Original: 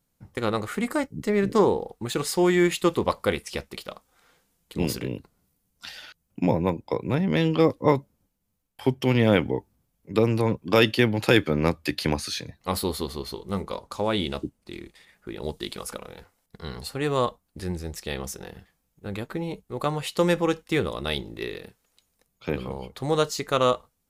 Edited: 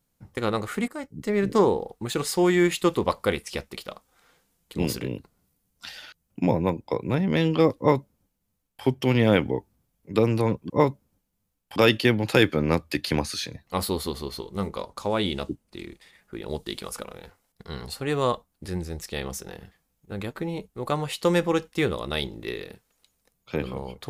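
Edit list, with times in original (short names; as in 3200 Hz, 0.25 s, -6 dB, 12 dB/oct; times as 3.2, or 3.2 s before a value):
0.88–1.6 fade in equal-power, from -16.5 dB
7.78–8.84 copy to 10.7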